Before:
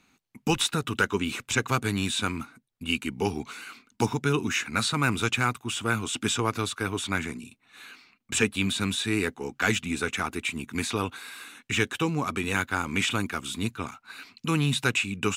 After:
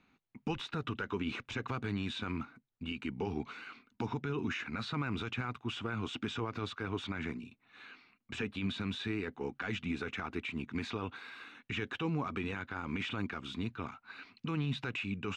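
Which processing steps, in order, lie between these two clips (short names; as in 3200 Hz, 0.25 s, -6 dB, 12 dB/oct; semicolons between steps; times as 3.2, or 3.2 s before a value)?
limiter -21.5 dBFS, peak gain reduction 11 dB; air absorption 230 m; gain -3.5 dB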